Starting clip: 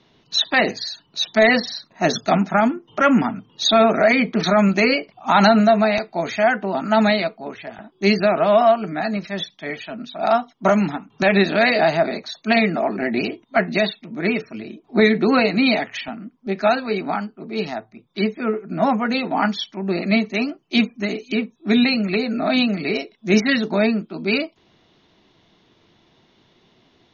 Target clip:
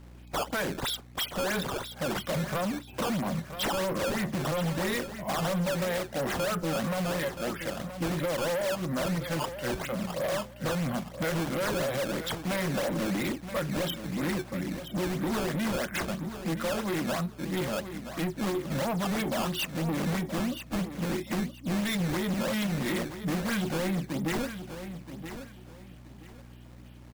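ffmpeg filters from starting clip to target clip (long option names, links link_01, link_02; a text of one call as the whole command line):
ffmpeg -i in.wav -filter_complex "[0:a]acompressor=threshold=-21dB:ratio=8,asetrate=37084,aresample=44100,atempo=1.18921,aeval=exprs='val(0)+0.00398*(sin(2*PI*60*n/s)+sin(2*PI*2*60*n/s)/2+sin(2*PI*3*60*n/s)/3+sin(2*PI*4*60*n/s)/4+sin(2*PI*5*60*n/s)/5)':channel_layout=same,acrusher=samples=13:mix=1:aa=0.000001:lfo=1:lforange=20.8:lforate=3,volume=27.5dB,asoftclip=hard,volume=-27.5dB,asplit=2[link_01][link_02];[link_02]aecho=0:1:975|1950|2925:0.299|0.0746|0.0187[link_03];[link_01][link_03]amix=inputs=2:normalize=0" out.wav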